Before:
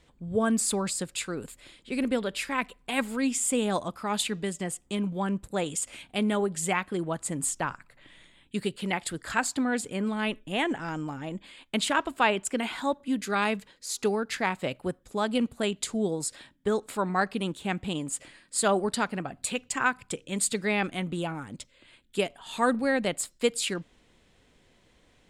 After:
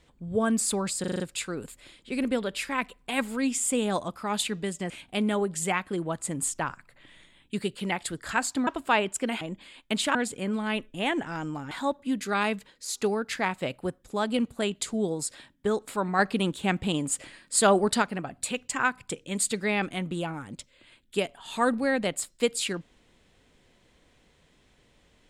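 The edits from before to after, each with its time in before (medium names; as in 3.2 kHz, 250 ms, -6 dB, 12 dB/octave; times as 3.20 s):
1.00 s: stutter 0.04 s, 6 plays
4.70–5.91 s: delete
9.68–11.24 s: swap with 11.98–12.72 s
17.20–19.03 s: gain +4 dB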